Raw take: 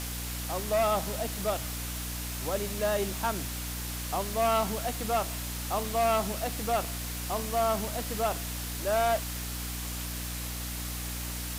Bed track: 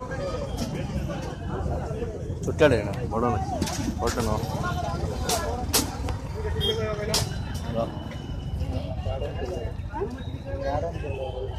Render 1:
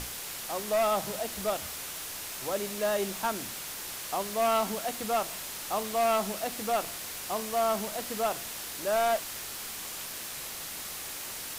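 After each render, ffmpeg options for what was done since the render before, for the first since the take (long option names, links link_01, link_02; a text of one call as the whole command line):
ffmpeg -i in.wav -af "bandreject=frequency=60:width_type=h:width=6,bandreject=frequency=120:width_type=h:width=6,bandreject=frequency=180:width_type=h:width=6,bandreject=frequency=240:width_type=h:width=6,bandreject=frequency=300:width_type=h:width=6" out.wav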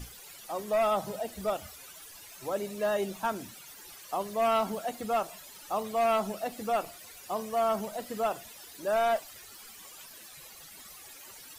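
ffmpeg -i in.wav -af "afftdn=noise_reduction=15:noise_floor=-39" out.wav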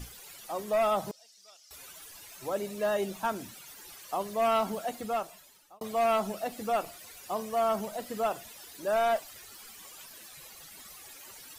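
ffmpeg -i in.wav -filter_complex "[0:a]asettb=1/sr,asplit=3[link_01][link_02][link_03];[link_01]atrim=end=1.114[link_04];[link_02]atrim=start=1.11:end=1.71,asetpts=PTS-STARTPTS,afade=type=in:duration=0.004:curve=qsin,afade=type=out:start_time=0.596:duration=0.004:curve=qsin,bandpass=frequency=5400:width_type=q:width=3.9[link_05];[link_03]atrim=start=1.706[link_06];[link_04][link_05]acrossfade=duration=0.004:curve1=hsin:curve2=qsin[link_07];[link_07][link_06]acrossfade=duration=0.004:curve1=qsin:curve2=hsin,asplit=2[link_08][link_09];[link_08]atrim=end=5.81,asetpts=PTS-STARTPTS,afade=type=out:start_time=4.93:duration=0.88[link_10];[link_09]atrim=start=5.81,asetpts=PTS-STARTPTS,afade=type=in:duration=0.004:curve=hsin[link_11];[link_10][link_11]concat=n=2:v=0:a=1" out.wav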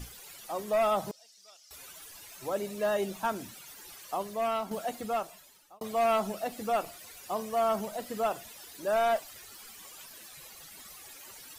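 ffmpeg -i in.wav -filter_complex "[0:a]asplit=2[link_01][link_02];[link_01]atrim=end=4.71,asetpts=PTS-STARTPTS,afade=type=out:start_time=4.05:duration=0.66:silence=0.421697[link_03];[link_02]atrim=start=4.71,asetpts=PTS-STARTPTS,afade=type=in:duration=0.004:curve=hsin:silence=0.421697[link_04];[link_03][link_04]concat=n=2:v=0:a=1" out.wav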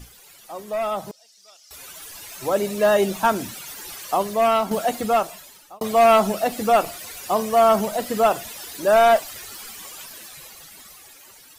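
ffmpeg -i in.wav -af "dynaudnorm=framelen=530:gausssize=7:maxgain=12dB" out.wav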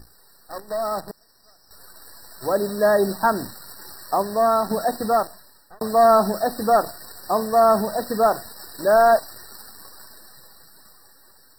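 ffmpeg -i in.wav -af "acrusher=bits=6:dc=4:mix=0:aa=0.000001,afftfilt=real='re*eq(mod(floor(b*sr/1024/1900),2),0)':imag='im*eq(mod(floor(b*sr/1024/1900),2),0)':win_size=1024:overlap=0.75" out.wav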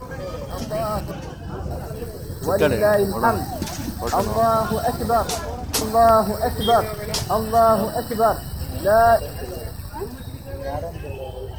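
ffmpeg -i in.wav -i bed.wav -filter_complex "[1:a]volume=-0.5dB[link_01];[0:a][link_01]amix=inputs=2:normalize=0" out.wav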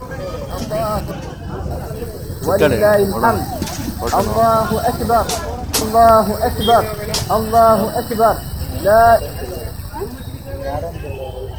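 ffmpeg -i in.wav -af "volume=5dB,alimiter=limit=-1dB:level=0:latency=1" out.wav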